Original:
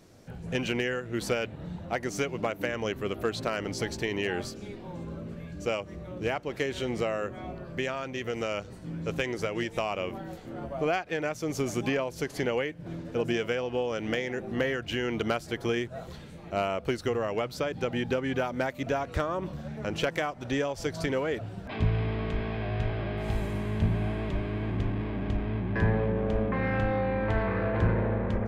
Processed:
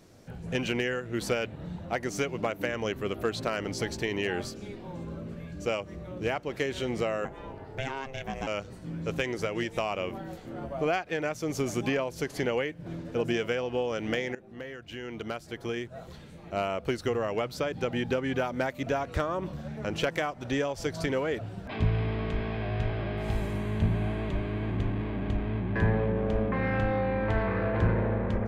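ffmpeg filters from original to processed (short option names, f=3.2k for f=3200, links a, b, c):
-filter_complex "[0:a]asettb=1/sr,asplit=3[a][b][c];[a]atrim=end=7.254[d];[b]atrim=start=7.25:end=8.47,asetpts=PTS-STARTPTS,afade=t=in:d=0.004:c=qsin,afade=t=out:st=1.216:d=0.004:c=qsin,aeval=exprs='val(0)*sin(2*PI*270*n/s)':c=same[e];[c]atrim=start=8.466[f];[d][e]acrossfade=d=0.004:c1=hsin:c2=qsin[g];[g][f]acrossfade=d=0.004:c1=qsin:c2=hsin,asettb=1/sr,asplit=3[h][i][j];[h]atrim=end=23.564[k];[i]atrim=start=23.56:end=26.2,asetpts=PTS-STARTPTS,afade=t=in:d=0.004:c=qsin,afade=t=out:st=2.636:d=0.004:c=qsin,bandreject=f=5.2k:w=8.4[l];[j]atrim=start=26.196[m];[k][l]acrossfade=d=0.004:c1=hsin:c2=qsin[n];[n][m]acrossfade=d=0.004:c1=qsin:c2=hsin,asplit=2[o][p];[o]atrim=end=14.35,asetpts=PTS-STARTPTS,afade=t=out:st=14.346:d=0.004:c=hsin:silence=0.149624[q];[p]atrim=start=14.35,asetpts=PTS-STARTPTS,afade=t=in:d=2.71:silence=0.149624[r];[q][r]concat=n=2:v=0:a=1"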